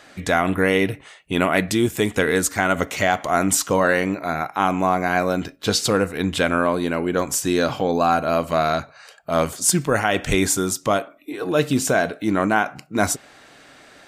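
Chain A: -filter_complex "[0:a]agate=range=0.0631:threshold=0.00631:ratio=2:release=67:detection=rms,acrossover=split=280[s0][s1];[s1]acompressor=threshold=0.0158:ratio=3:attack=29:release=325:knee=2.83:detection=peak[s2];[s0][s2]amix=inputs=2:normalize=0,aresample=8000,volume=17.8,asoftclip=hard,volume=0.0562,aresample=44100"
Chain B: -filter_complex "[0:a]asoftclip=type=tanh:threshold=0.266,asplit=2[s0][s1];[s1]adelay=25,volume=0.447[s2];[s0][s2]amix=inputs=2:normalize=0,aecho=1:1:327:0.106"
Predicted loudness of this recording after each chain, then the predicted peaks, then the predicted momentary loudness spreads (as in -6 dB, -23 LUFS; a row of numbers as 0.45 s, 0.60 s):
-31.5 LUFS, -21.5 LUFS; -21.5 dBFS, -8.5 dBFS; 6 LU, 6 LU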